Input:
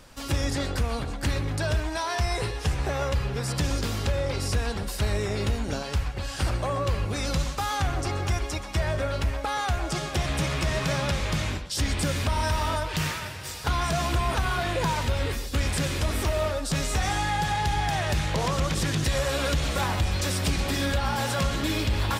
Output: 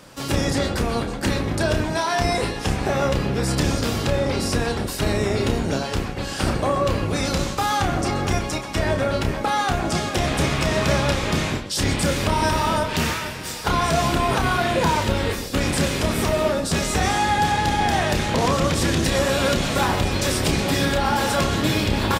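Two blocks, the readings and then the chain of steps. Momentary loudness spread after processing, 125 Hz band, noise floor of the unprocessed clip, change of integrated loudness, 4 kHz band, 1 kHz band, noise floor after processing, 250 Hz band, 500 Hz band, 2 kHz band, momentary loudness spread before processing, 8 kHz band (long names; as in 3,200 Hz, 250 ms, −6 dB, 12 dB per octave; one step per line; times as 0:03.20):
4 LU, +3.0 dB, −35 dBFS, +5.5 dB, +5.5 dB, +7.0 dB, −30 dBFS, +8.5 dB, +8.0 dB, +6.0 dB, 3 LU, +5.5 dB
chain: sub-octave generator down 1 octave, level +4 dB
high-pass filter 430 Hz 6 dB per octave
tilt shelving filter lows +3.5 dB, about 680 Hz
double-tracking delay 30 ms −7 dB
level +8 dB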